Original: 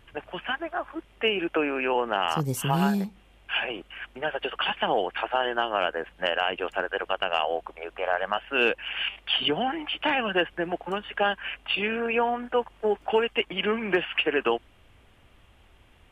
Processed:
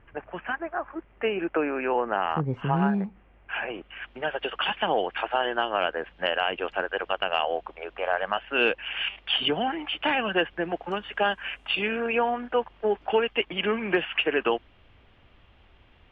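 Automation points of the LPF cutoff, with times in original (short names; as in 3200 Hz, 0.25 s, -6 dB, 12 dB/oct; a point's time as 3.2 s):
LPF 24 dB/oct
3.63 s 2200 Hz
4.19 s 4700 Hz
10.57 s 4700 Hz
11.57 s 9700 Hz
12.57 s 4500 Hz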